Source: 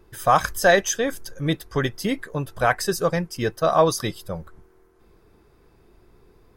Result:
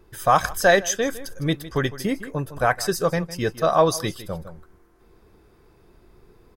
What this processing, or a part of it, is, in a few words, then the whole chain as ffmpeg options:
ducked delay: -filter_complex "[0:a]asettb=1/sr,asplit=3[a][b][c];[a]atrim=end=1.924[d];[b]atrim=start=1.92:end=2.76,asetpts=PTS-STARTPTS,afade=t=in:d=0.004:c=qsin,afade=t=out:st=0.836:d=0.004:c=qsin,equalizer=f=3.4k:w=1.3:g=-6[e];[c]atrim=start=2.756[f];[d][e]acrossfade=d=0.004:c1=hsin:c2=qsin[g];[g][f]acrossfade=d=0.004:c1=qsin:c2=hsin,asplit=3[h][i][j];[i]adelay=157,volume=-4dB[k];[j]apad=whole_len=296283[l];[k][l]sidechaincompress=threshold=-36dB:ratio=3:attack=16:release=611[m];[h][m]amix=inputs=2:normalize=0"

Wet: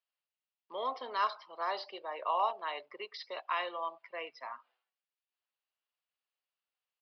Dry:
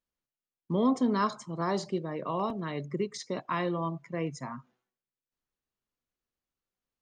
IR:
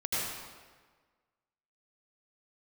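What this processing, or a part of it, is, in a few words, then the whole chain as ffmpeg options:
musical greeting card: -filter_complex "[0:a]aresample=11025,aresample=44100,highpass=f=590:w=0.5412,highpass=f=590:w=1.3066,equalizer=f=2.8k:t=o:w=0.38:g=7,asettb=1/sr,asplit=3[a][b][c];[a]atrim=end=1.924[d];[b]atrim=start=1.92:end=3.1,asetpts=PTS-STARTPTS,afade=t=in:d=0.004:c=qsin,afade=t=out:st=1.176:d=0.004:c=qsin,equalizer=f=870:t=o:w=0.75:g=7[e];[c]atrim=start=3.096[f];[d][e]acrossfade=d=0.004:c1=hsin:c2=qsin[g];[g][f]acrossfade=d=0.004:c1=qsin:c2=hsin,volume=-1.5dB"

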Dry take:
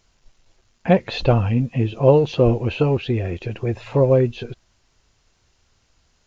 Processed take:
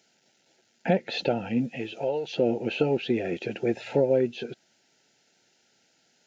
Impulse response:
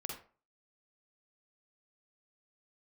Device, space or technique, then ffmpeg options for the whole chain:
PA system with an anti-feedback notch: -filter_complex "[0:a]highpass=f=180:w=0.5412,highpass=f=180:w=1.3066,asuperstop=centerf=1100:order=8:qfactor=2.8,alimiter=limit=-12dB:level=0:latency=1:release=499,asettb=1/sr,asplit=3[a][b][c];[a]atrim=end=1.754[d];[b]atrim=start=1.75:end=2.36,asetpts=PTS-STARTPTS,afade=t=in:d=0.004:c=qsin,afade=t=out:st=0.606:d=0.004:c=qsin,equalizer=f=200:t=o:w=2.2:g=-13[e];[c]atrim=start=2.356[f];[d][e]acrossfade=d=0.004:c1=hsin:c2=qsin[g];[g][f]acrossfade=d=0.004:c1=qsin:c2=hsin"

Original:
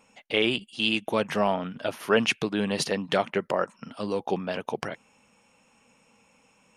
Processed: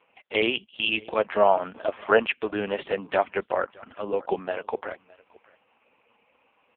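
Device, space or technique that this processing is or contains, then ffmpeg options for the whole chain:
satellite phone: -filter_complex "[0:a]lowpass=11k,asettb=1/sr,asplit=3[a][b][c];[a]atrim=end=1.144[d];[b]atrim=start=1.14:end=2.2,asetpts=PTS-STARTPTS,afade=t=in:d=0.004:c=qsin,afade=t=out:st=1.056:d=0.004:c=qsin,adynamicequalizer=threshold=0.0158:dfrequency=670:dqfactor=1.8:tfrequency=670:tqfactor=1.8:attack=5:release=100:ratio=0.375:range=2:mode=boostabove:tftype=bell[e];[c]atrim=start=2.196[f];[d][e]acrossfade=d=0.004:c1=hsin:c2=qsin[g];[g][f]acrossfade=d=0.004:c1=qsin:c2=hsin,highpass=380,lowpass=3.1k,aecho=1:1:614:0.0631,volume=4.5dB" -ar 8000 -c:a libopencore_amrnb -b:a 4750

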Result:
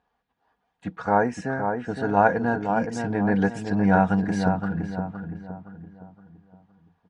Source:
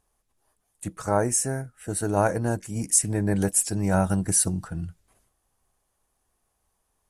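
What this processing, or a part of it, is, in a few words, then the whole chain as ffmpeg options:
guitar cabinet: -filter_complex "[0:a]highpass=81,equalizer=f=160:t=q:w=4:g=5,equalizer=f=830:t=q:w=4:g=9,equalizer=f=1.6k:t=q:w=4:g=7,lowpass=f=3.9k:w=0.5412,lowpass=f=3.9k:w=1.3066,aecho=1:1:4.2:0.52,asplit=2[a][b];[b]adelay=516,lowpass=f=1.8k:p=1,volume=-5.5dB,asplit=2[c][d];[d]adelay=516,lowpass=f=1.8k:p=1,volume=0.41,asplit=2[e][f];[f]adelay=516,lowpass=f=1.8k:p=1,volume=0.41,asplit=2[g][h];[h]adelay=516,lowpass=f=1.8k:p=1,volume=0.41,asplit=2[i][j];[j]adelay=516,lowpass=f=1.8k:p=1,volume=0.41[k];[a][c][e][g][i][k]amix=inputs=6:normalize=0"

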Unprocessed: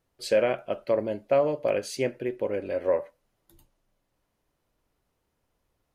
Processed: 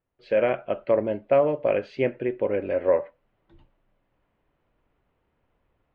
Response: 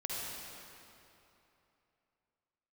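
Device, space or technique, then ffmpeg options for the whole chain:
action camera in a waterproof case: -af "lowpass=f=2.9k:w=0.5412,lowpass=f=2.9k:w=1.3066,dynaudnorm=f=220:g=3:m=12dB,volume=-7dB" -ar 48000 -c:a aac -b:a 96k

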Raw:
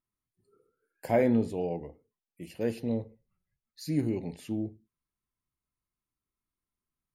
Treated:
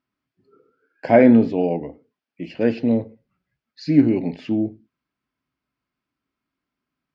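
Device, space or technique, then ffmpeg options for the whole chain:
guitar cabinet: -af "lowpass=7.7k,highpass=80,equalizer=f=88:t=q:w=4:g=-8,equalizer=f=270:t=q:w=4:g=9,equalizer=f=640:t=q:w=4:g=4,equalizer=f=1.5k:t=q:w=4:g=6,equalizer=f=2.4k:t=q:w=4:g=3,equalizer=f=3.9k:t=q:w=4:g=-6,lowpass=f=4.5k:w=0.5412,lowpass=f=4.5k:w=1.3066,equalizer=f=4.8k:w=1.2:g=4,volume=9dB"

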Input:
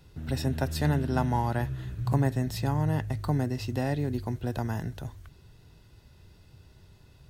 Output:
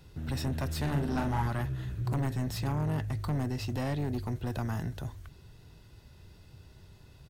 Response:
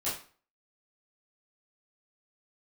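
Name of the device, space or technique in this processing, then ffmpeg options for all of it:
saturation between pre-emphasis and de-emphasis: -filter_complex "[0:a]highshelf=f=4.1k:g=10.5,asoftclip=type=tanh:threshold=-27.5dB,highshelf=f=4.1k:g=-10.5,asplit=3[a][b][c];[a]afade=t=out:st=0.85:d=0.02[d];[b]asplit=2[e][f];[f]adelay=43,volume=-4.5dB[g];[e][g]amix=inputs=2:normalize=0,afade=t=in:st=0.85:d=0.02,afade=t=out:st=1.47:d=0.02[h];[c]afade=t=in:st=1.47:d=0.02[i];[d][h][i]amix=inputs=3:normalize=0,volume=1dB"

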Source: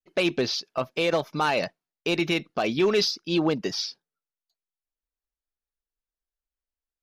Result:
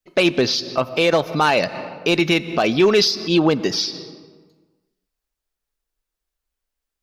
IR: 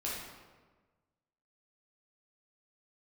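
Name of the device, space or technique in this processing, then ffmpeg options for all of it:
ducked reverb: -filter_complex "[0:a]asplit=3[a][b][c];[1:a]atrim=start_sample=2205[d];[b][d]afir=irnorm=-1:irlink=0[e];[c]apad=whole_len=309659[f];[e][f]sidechaincompress=threshold=-38dB:ratio=6:attack=9.1:release=129,volume=-7dB[g];[a][g]amix=inputs=2:normalize=0,volume=7dB"

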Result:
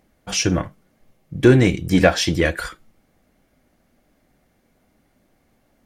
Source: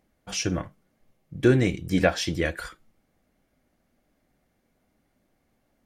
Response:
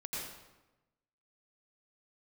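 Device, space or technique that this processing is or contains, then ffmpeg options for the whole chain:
parallel distortion: -filter_complex "[0:a]asplit=2[a][b];[b]asoftclip=type=hard:threshold=-19.5dB,volume=-8dB[c];[a][c]amix=inputs=2:normalize=0,volume=5dB"

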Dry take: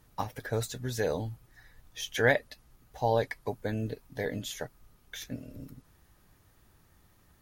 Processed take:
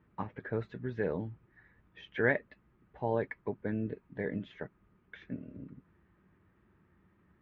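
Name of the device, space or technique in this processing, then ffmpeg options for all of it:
bass cabinet: -af "highpass=70,equalizer=f=120:t=q:w=4:g=-3,equalizer=f=190:t=q:w=4:g=8,equalizer=f=360:t=q:w=4:g=6,equalizer=f=530:t=q:w=4:g=-3,equalizer=f=750:t=q:w=4:g=-7,lowpass=f=2.3k:w=0.5412,lowpass=f=2.3k:w=1.3066,volume=-3dB"

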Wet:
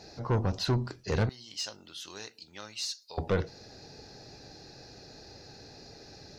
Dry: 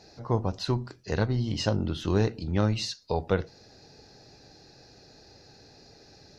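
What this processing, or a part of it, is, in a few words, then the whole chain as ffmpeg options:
saturation between pre-emphasis and de-emphasis: -filter_complex "[0:a]asettb=1/sr,asplit=3[a][b][c];[a]atrim=end=1.294[d];[b]atrim=start=1.29:end=3.18,asetpts=PTS-STARTPTS,afade=t=in:d=0.004:c=qsin,afade=t=out:st=1.886:d=0.004:c=qsin,aderivative[e];[c]atrim=start=3.176[f];[d][e]acrossfade=d=0.004:c1=hsin:c2=qsin[g];[g][f]acrossfade=d=0.004:c1=qsin:c2=hsin,highshelf=f=6.5k:g=11,asoftclip=type=tanh:threshold=-24.5dB,highshelf=f=6.5k:g=-11,volume=3.5dB"

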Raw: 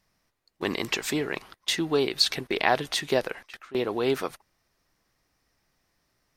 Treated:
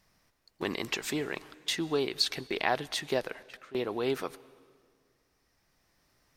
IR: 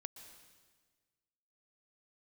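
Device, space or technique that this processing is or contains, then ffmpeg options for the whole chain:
ducked reverb: -filter_complex "[0:a]asplit=3[a][b][c];[1:a]atrim=start_sample=2205[d];[b][d]afir=irnorm=-1:irlink=0[e];[c]apad=whole_len=280915[f];[e][f]sidechaincompress=threshold=-42dB:ratio=6:attack=27:release=1390,volume=12dB[g];[a][g]amix=inputs=2:normalize=0,volume=-7dB"

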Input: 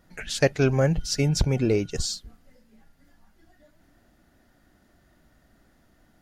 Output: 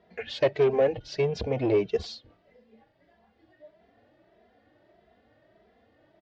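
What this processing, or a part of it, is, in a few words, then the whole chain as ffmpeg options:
barber-pole flanger into a guitar amplifier: -filter_complex "[0:a]asplit=2[a][b];[b]adelay=2.6,afreqshift=1.6[c];[a][c]amix=inputs=2:normalize=1,asoftclip=type=tanh:threshold=-23dB,highpass=110,equalizer=f=160:t=q:w=4:g=-10,equalizer=f=260:t=q:w=4:g=-5,equalizer=f=450:t=q:w=4:g=9,equalizer=f=650:t=q:w=4:g=7,equalizer=f=1.4k:t=q:w=4:g=-7,lowpass=f=3.8k:w=0.5412,lowpass=f=3.8k:w=1.3066,volume=3dB"

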